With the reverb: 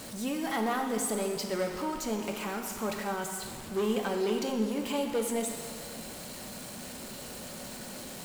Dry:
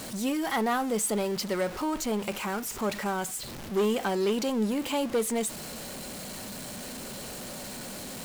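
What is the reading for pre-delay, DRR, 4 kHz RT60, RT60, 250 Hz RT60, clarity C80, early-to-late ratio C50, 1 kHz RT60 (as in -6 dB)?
4 ms, 3.5 dB, 1.9 s, 2.0 s, 2.1 s, 6.0 dB, 5.0 dB, 2.0 s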